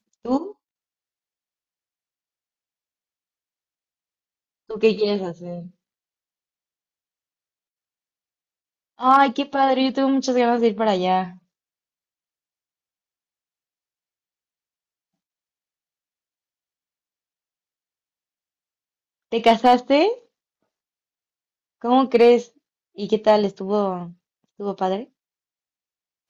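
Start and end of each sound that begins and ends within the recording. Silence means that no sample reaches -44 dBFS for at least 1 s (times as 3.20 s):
4.70–5.70 s
8.99–11.37 s
19.32–20.19 s
21.82–25.04 s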